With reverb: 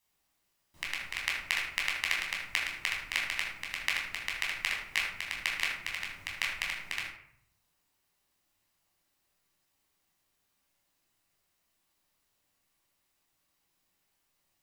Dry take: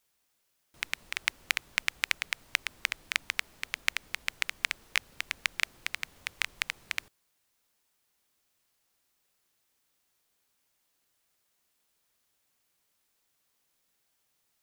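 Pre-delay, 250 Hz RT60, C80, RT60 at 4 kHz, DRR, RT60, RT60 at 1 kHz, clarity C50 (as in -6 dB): 12 ms, 0.95 s, 6.0 dB, 0.40 s, -3.5 dB, 0.65 s, 0.65 s, 3.0 dB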